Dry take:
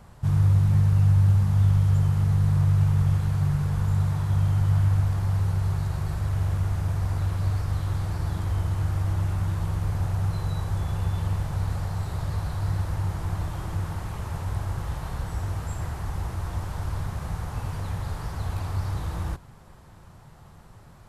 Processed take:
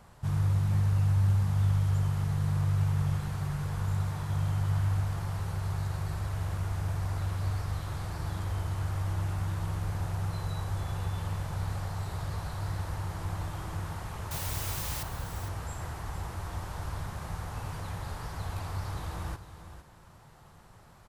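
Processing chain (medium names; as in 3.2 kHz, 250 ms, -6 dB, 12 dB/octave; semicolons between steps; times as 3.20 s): bass shelf 340 Hz -6 dB; 14.31–15.03 s: word length cut 6-bit, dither triangular; delay 457 ms -12 dB; trim -2 dB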